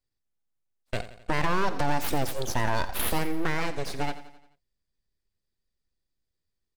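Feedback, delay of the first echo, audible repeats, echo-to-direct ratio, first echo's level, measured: 52%, 87 ms, 4, -12.5 dB, -14.0 dB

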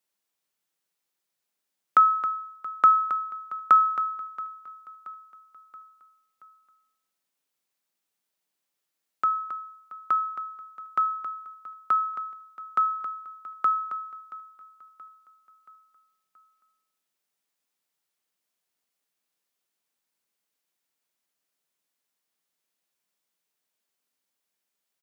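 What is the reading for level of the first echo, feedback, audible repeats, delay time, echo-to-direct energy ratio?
-19.0 dB, 51%, 3, 0.677 s, -17.5 dB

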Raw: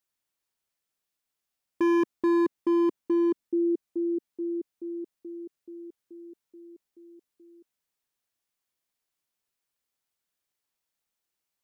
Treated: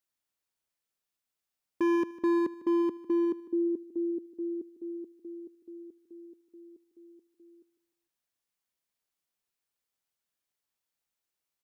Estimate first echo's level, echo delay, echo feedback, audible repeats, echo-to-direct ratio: -17.0 dB, 0.151 s, 39%, 3, -16.5 dB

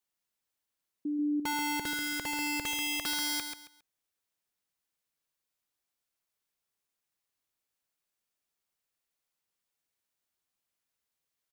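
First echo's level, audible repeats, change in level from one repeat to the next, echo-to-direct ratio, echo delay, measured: -7.0 dB, 3, -12.0 dB, -6.5 dB, 0.136 s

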